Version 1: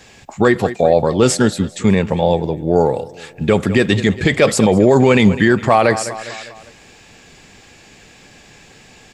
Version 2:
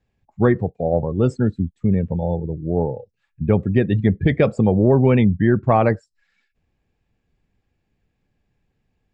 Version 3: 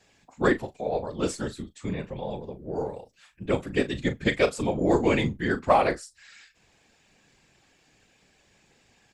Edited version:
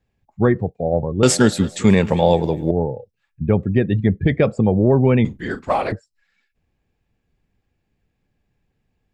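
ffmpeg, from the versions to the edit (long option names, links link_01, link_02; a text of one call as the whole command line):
ffmpeg -i take0.wav -i take1.wav -i take2.wav -filter_complex "[1:a]asplit=3[link_01][link_02][link_03];[link_01]atrim=end=1.232[link_04];[0:a]atrim=start=1.228:end=2.712[link_05];[link_02]atrim=start=2.708:end=5.252[link_06];[2:a]atrim=start=5.248:end=5.922[link_07];[link_03]atrim=start=5.918[link_08];[link_04][link_05]acrossfade=duration=0.004:curve1=hsin:curve2=hsin[link_09];[link_09][link_06]acrossfade=duration=0.004:curve1=hsin:curve2=hsin[link_10];[link_10][link_07]acrossfade=duration=0.004:curve1=hsin:curve2=hsin[link_11];[link_11][link_08]acrossfade=duration=0.004:curve1=hsin:curve2=hsin" out.wav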